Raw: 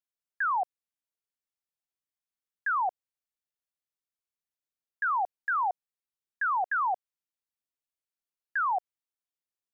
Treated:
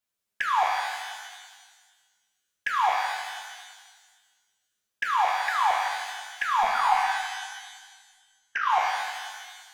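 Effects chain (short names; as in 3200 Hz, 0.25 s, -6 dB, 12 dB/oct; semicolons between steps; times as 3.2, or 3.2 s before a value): in parallel at -3.5 dB: soft clip -40 dBFS, distortion -9 dB; 6.63–8.7 on the sum: monotone LPC vocoder at 8 kHz 230 Hz; envelope flanger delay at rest 9.6 ms, full sweep at -28 dBFS; shimmer reverb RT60 1.5 s, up +12 st, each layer -8 dB, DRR -1 dB; gain +5.5 dB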